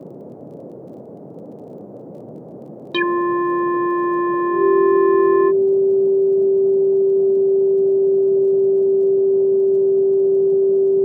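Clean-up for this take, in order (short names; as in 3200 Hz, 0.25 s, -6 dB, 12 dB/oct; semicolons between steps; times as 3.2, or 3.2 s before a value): de-click; notch 390 Hz, Q 30; noise print and reduce 27 dB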